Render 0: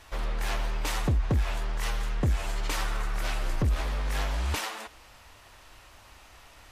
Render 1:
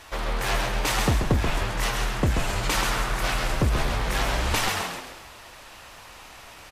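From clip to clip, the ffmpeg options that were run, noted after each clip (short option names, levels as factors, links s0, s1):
-filter_complex "[0:a]lowshelf=f=110:g=-8.5,aeval=exprs='0.126*(cos(1*acos(clip(val(0)/0.126,-1,1)))-cos(1*PI/2))+0.00126*(cos(6*acos(clip(val(0)/0.126,-1,1)))-cos(6*PI/2))':c=same,asplit=6[s0][s1][s2][s3][s4][s5];[s1]adelay=133,afreqshift=-82,volume=0.631[s6];[s2]adelay=266,afreqshift=-164,volume=0.272[s7];[s3]adelay=399,afreqshift=-246,volume=0.116[s8];[s4]adelay=532,afreqshift=-328,volume=0.0501[s9];[s5]adelay=665,afreqshift=-410,volume=0.0216[s10];[s0][s6][s7][s8][s9][s10]amix=inputs=6:normalize=0,volume=2.24"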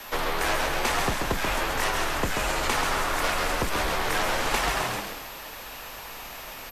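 -filter_complex "[0:a]aeval=exprs='val(0)+0.00316*sin(2*PI*13000*n/s)':c=same,afreqshift=-57,acrossover=split=250|900|2200|4900[s0][s1][s2][s3][s4];[s0]acompressor=threshold=0.0158:ratio=4[s5];[s1]acompressor=threshold=0.0178:ratio=4[s6];[s2]acompressor=threshold=0.0224:ratio=4[s7];[s3]acompressor=threshold=0.00794:ratio=4[s8];[s4]acompressor=threshold=0.00891:ratio=4[s9];[s5][s6][s7][s8][s9]amix=inputs=5:normalize=0,volume=1.78"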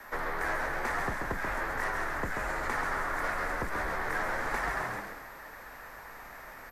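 -filter_complex "[0:a]highshelf=f=2300:t=q:w=3:g=-7.5,asplit=2[s0][s1];[s1]asoftclip=type=tanh:threshold=0.0501,volume=0.266[s2];[s0][s2]amix=inputs=2:normalize=0,volume=0.355"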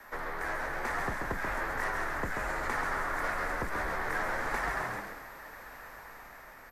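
-af "dynaudnorm=f=180:g=9:m=1.41,volume=0.668"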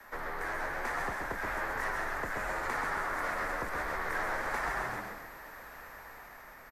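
-filter_complex "[0:a]asplit=2[s0][s1];[s1]adelay=122.4,volume=0.447,highshelf=f=4000:g=-2.76[s2];[s0][s2]amix=inputs=2:normalize=0,acrossover=split=360|580|2000[s3][s4][s5][s6];[s3]alimiter=level_in=3.55:limit=0.0631:level=0:latency=1:release=270,volume=0.282[s7];[s7][s4][s5][s6]amix=inputs=4:normalize=0,volume=0.841"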